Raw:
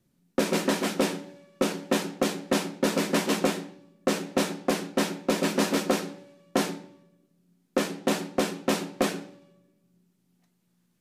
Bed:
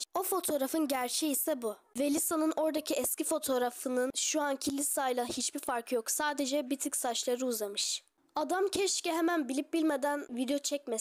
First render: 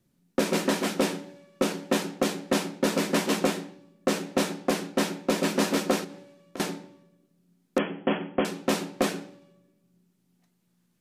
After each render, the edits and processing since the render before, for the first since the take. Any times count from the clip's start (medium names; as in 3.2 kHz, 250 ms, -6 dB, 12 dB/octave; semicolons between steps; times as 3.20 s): 6.04–6.60 s: compression, threshold -37 dBFS; 7.78–8.45 s: brick-wall FIR low-pass 3.4 kHz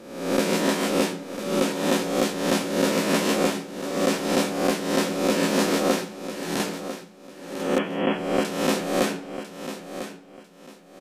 reverse spectral sustain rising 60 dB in 0.83 s; on a send: feedback delay 998 ms, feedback 25%, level -11 dB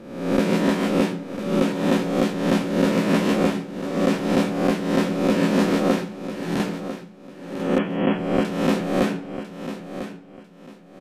tone controls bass +9 dB, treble -9 dB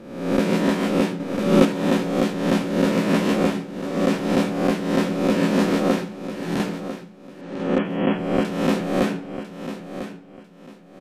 1.20–1.65 s: gain +5.5 dB; 7.41–7.85 s: distance through air 68 m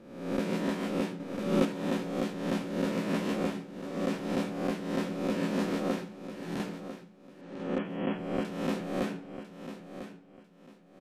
trim -11 dB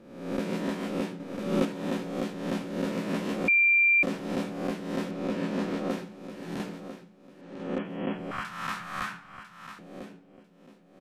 3.48–4.03 s: bleep 2.37 kHz -18 dBFS; 5.11–5.90 s: treble shelf 7.1 kHz -9.5 dB; 8.31–9.79 s: FFT filter 120 Hz 0 dB, 300 Hz -19 dB, 500 Hz -19 dB, 1.2 kHz +13 dB, 2.7 kHz +3 dB